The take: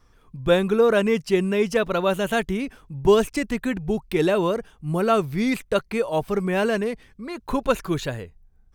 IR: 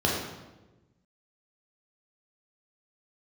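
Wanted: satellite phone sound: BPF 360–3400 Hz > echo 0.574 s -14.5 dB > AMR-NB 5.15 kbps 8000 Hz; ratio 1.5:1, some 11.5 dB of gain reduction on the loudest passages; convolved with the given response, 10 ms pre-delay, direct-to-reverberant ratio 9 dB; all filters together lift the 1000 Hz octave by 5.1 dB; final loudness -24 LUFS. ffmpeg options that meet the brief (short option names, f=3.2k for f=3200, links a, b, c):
-filter_complex "[0:a]equalizer=f=1k:t=o:g=7,acompressor=threshold=-45dB:ratio=1.5,asplit=2[a][b];[1:a]atrim=start_sample=2205,adelay=10[c];[b][c]afir=irnorm=-1:irlink=0,volume=-22dB[d];[a][d]amix=inputs=2:normalize=0,highpass=360,lowpass=3.4k,aecho=1:1:574:0.188,volume=10dB" -ar 8000 -c:a libopencore_amrnb -b:a 5150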